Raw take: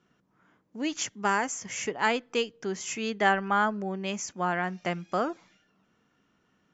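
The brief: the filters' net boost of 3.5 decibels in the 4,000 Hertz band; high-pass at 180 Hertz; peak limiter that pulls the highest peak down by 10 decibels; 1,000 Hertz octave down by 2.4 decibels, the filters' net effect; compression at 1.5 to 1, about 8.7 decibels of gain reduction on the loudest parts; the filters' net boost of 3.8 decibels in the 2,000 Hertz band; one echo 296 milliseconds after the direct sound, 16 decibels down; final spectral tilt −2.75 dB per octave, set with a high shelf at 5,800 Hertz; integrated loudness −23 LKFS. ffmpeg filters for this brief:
ffmpeg -i in.wav -af "highpass=180,equalizer=frequency=1000:width_type=o:gain=-5,equalizer=frequency=2000:width_type=o:gain=6.5,equalizer=frequency=4000:width_type=o:gain=5,highshelf=frequency=5800:gain=-8,acompressor=threshold=-42dB:ratio=1.5,alimiter=level_in=1.5dB:limit=-24dB:level=0:latency=1,volume=-1.5dB,aecho=1:1:296:0.158,volume=15dB" out.wav

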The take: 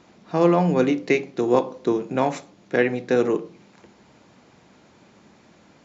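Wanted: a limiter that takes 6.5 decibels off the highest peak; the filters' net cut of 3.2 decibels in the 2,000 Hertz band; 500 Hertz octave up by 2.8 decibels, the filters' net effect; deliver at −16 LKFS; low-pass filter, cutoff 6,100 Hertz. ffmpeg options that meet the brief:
ffmpeg -i in.wav -af "lowpass=6100,equalizer=frequency=500:width_type=o:gain=3.5,equalizer=frequency=2000:width_type=o:gain=-4,volume=6.5dB,alimiter=limit=-4dB:level=0:latency=1" out.wav

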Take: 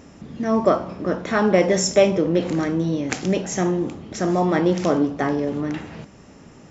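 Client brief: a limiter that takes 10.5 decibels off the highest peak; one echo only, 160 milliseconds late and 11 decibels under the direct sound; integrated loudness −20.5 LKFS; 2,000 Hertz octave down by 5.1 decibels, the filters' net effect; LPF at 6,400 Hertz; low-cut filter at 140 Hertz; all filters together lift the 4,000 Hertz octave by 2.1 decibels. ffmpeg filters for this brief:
ffmpeg -i in.wav -af "highpass=140,lowpass=6400,equalizer=frequency=2000:width_type=o:gain=-8,equalizer=frequency=4000:width_type=o:gain=7,alimiter=limit=-13.5dB:level=0:latency=1,aecho=1:1:160:0.282,volume=3.5dB" out.wav

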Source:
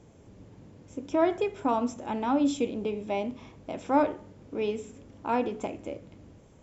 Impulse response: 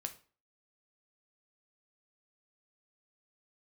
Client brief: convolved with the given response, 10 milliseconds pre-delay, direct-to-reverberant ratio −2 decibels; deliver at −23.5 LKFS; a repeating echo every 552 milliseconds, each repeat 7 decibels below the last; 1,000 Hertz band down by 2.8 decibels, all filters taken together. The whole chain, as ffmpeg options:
-filter_complex "[0:a]equalizer=frequency=1000:width_type=o:gain=-3.5,aecho=1:1:552|1104|1656|2208|2760:0.447|0.201|0.0905|0.0407|0.0183,asplit=2[link_01][link_02];[1:a]atrim=start_sample=2205,adelay=10[link_03];[link_02][link_03]afir=irnorm=-1:irlink=0,volume=4dB[link_04];[link_01][link_04]amix=inputs=2:normalize=0,volume=2.5dB"

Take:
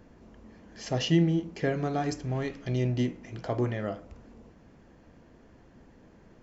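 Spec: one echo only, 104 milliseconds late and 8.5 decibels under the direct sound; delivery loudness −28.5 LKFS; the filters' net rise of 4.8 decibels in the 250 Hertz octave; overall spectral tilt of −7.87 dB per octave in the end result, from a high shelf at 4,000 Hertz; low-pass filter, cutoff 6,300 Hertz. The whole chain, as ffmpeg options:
ffmpeg -i in.wav -af "lowpass=6300,equalizer=frequency=250:width_type=o:gain=7,highshelf=frequency=4000:gain=-8.5,aecho=1:1:104:0.376,volume=-3dB" out.wav

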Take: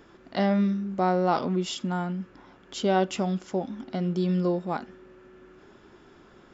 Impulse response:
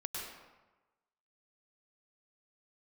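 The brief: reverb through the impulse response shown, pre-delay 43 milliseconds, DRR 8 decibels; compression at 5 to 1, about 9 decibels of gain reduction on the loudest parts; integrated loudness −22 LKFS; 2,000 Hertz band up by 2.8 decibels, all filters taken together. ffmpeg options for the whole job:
-filter_complex "[0:a]equalizer=frequency=2000:width_type=o:gain=4,acompressor=threshold=-30dB:ratio=5,asplit=2[link_01][link_02];[1:a]atrim=start_sample=2205,adelay=43[link_03];[link_02][link_03]afir=irnorm=-1:irlink=0,volume=-9dB[link_04];[link_01][link_04]amix=inputs=2:normalize=0,volume=12dB"

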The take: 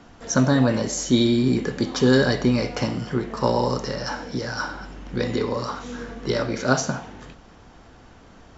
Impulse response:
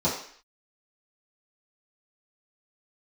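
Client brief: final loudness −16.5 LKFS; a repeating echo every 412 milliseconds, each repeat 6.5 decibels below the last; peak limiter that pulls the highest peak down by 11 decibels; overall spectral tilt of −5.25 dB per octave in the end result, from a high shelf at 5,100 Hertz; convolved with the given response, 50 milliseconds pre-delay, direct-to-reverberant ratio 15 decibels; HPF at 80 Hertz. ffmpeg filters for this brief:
-filter_complex "[0:a]highpass=80,highshelf=frequency=5100:gain=-5.5,alimiter=limit=-15dB:level=0:latency=1,aecho=1:1:412|824|1236|1648|2060|2472:0.473|0.222|0.105|0.0491|0.0231|0.0109,asplit=2[link_01][link_02];[1:a]atrim=start_sample=2205,adelay=50[link_03];[link_02][link_03]afir=irnorm=-1:irlink=0,volume=-27.5dB[link_04];[link_01][link_04]amix=inputs=2:normalize=0,volume=9.5dB"

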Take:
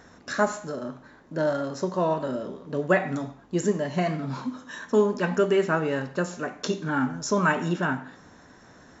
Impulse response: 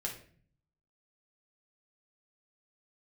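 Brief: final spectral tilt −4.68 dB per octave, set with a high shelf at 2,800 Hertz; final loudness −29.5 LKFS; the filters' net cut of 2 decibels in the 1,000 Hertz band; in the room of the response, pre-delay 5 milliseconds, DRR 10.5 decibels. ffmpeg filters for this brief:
-filter_complex "[0:a]equalizer=frequency=1000:width_type=o:gain=-4,highshelf=frequency=2800:gain=8.5,asplit=2[link_01][link_02];[1:a]atrim=start_sample=2205,adelay=5[link_03];[link_02][link_03]afir=irnorm=-1:irlink=0,volume=-11.5dB[link_04];[link_01][link_04]amix=inputs=2:normalize=0,volume=-3.5dB"

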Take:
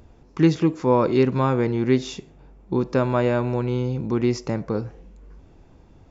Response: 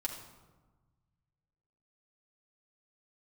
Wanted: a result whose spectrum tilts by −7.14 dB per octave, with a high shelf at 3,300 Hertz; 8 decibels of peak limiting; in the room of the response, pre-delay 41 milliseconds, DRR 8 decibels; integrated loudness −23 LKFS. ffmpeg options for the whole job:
-filter_complex "[0:a]highshelf=frequency=3300:gain=-8.5,alimiter=limit=-14dB:level=0:latency=1,asplit=2[link_01][link_02];[1:a]atrim=start_sample=2205,adelay=41[link_03];[link_02][link_03]afir=irnorm=-1:irlink=0,volume=-9.5dB[link_04];[link_01][link_04]amix=inputs=2:normalize=0,volume=1dB"

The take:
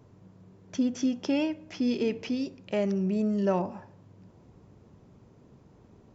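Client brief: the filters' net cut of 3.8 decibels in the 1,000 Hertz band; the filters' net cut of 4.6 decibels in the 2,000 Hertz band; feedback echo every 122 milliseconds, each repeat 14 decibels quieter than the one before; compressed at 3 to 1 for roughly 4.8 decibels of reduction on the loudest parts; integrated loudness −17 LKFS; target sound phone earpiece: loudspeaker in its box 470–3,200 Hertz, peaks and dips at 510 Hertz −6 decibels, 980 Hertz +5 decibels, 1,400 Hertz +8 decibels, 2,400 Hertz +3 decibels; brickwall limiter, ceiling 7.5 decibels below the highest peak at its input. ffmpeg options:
ffmpeg -i in.wav -af "equalizer=frequency=1000:width_type=o:gain=-6.5,equalizer=frequency=2000:width_type=o:gain=-8.5,acompressor=threshold=-29dB:ratio=3,alimiter=level_in=4.5dB:limit=-24dB:level=0:latency=1,volume=-4.5dB,highpass=470,equalizer=frequency=510:width_type=q:width=4:gain=-6,equalizer=frequency=980:width_type=q:width=4:gain=5,equalizer=frequency=1400:width_type=q:width=4:gain=8,equalizer=frequency=2400:width_type=q:width=4:gain=3,lowpass=frequency=3200:width=0.5412,lowpass=frequency=3200:width=1.3066,aecho=1:1:122|244:0.2|0.0399,volume=28.5dB" out.wav

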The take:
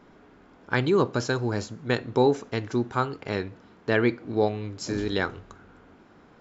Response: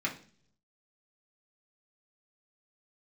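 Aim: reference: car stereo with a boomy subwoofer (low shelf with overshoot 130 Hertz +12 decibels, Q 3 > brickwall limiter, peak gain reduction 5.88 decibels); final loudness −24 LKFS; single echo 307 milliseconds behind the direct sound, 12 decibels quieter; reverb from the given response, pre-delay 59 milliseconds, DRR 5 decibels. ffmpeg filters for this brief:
-filter_complex "[0:a]aecho=1:1:307:0.251,asplit=2[link_01][link_02];[1:a]atrim=start_sample=2205,adelay=59[link_03];[link_02][link_03]afir=irnorm=-1:irlink=0,volume=-11dB[link_04];[link_01][link_04]amix=inputs=2:normalize=0,lowshelf=frequency=130:width_type=q:width=3:gain=12,volume=1dB,alimiter=limit=-14.5dB:level=0:latency=1"

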